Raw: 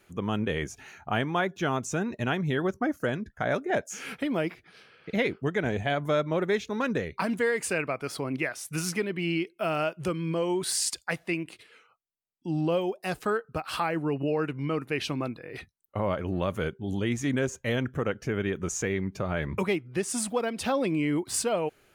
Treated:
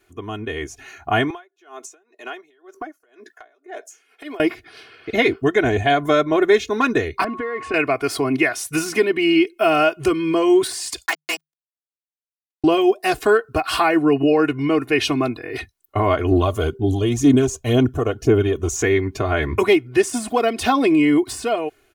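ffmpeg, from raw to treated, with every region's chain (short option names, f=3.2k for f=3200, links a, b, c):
-filter_complex "[0:a]asettb=1/sr,asplit=3[a][b][c];[a]atrim=end=1.304[d];[b]atrim=start=1.3:end=4.4,asetpts=PTS-STARTPTS,afade=t=in:d=0.004:c=qsin,afade=t=out:st=3.096:d=0.004:c=qsin,highpass=f=370:w=0.5412,highpass=f=370:w=1.3066,acompressor=threshold=-40dB:ratio=5:attack=3.2:release=140:knee=1:detection=peak,aeval=exprs='val(0)*pow(10,-31*(0.5-0.5*cos(2*PI*2*n/s))/20)':c=same[e];[c]atrim=start=4.396[f];[d][e]acrossfade=d=0.004:c1=hsin:c2=qsin[g];[g][f]acrossfade=d=0.004:c1=qsin:c2=hsin,asettb=1/sr,asplit=3[h][i][j];[h]atrim=end=7.244[k];[i]atrim=start=7.24:end=7.74,asetpts=PTS-STARTPTS,afade=t=in:d=0.004:c=qsin,afade=t=out:st=0.496:d=0.004:c=qsin,lowpass=2k,acompressor=threshold=-31dB:ratio=12:attack=3.2:release=140:knee=1:detection=peak,aeval=exprs='val(0)+0.00501*sin(2*PI*1100*n/s)':c=same[l];[j]atrim=start=7.736[m];[k][l]acrossfade=d=0.004:c1=hsin:c2=qsin[n];[n][m]acrossfade=d=0.004:c1=qsin:c2=hsin,asettb=1/sr,asplit=3[o][p][q];[o]atrim=end=11.064[r];[p]atrim=start=11.06:end=12.64,asetpts=PTS-STARTPTS,afade=t=in:d=0.004:c=qsin,afade=t=out:st=1.576:d=0.004:c=qsin,acrossover=split=600 3000:gain=0.141 1 0.0891[s][t][u];[s][t][u]amix=inputs=3:normalize=0,acrusher=bits=4:mix=0:aa=0.5,afreqshift=150[v];[q]atrim=start=12.636[w];[r][v]acrossfade=d=0.004:c1=hsin:c2=qsin[x];[x][w]acrossfade=d=0.004:c1=qsin:c2=hsin,asettb=1/sr,asplit=3[y][z][aa];[y]atrim=end=16.314[ab];[z]atrim=start=16.31:end=18.76,asetpts=PTS-STARTPTS,afade=t=in:d=0.004:c=qsin,afade=t=out:st=2.446:d=0.004:c=qsin,equalizer=f=1.9k:t=o:w=0.81:g=-14,aphaser=in_gain=1:out_gain=1:delay=1.8:decay=0.43:speed=2:type=sinusoidal[ac];[aa]atrim=start=18.756[ad];[ab][ac]acrossfade=d=0.004:c1=hsin:c2=qsin[ae];[ae][ad]acrossfade=d=0.004:c1=qsin:c2=hsin,deesser=0.7,aecho=1:1:2.8:0.9,dynaudnorm=f=380:g=5:m=13dB,volume=-2dB"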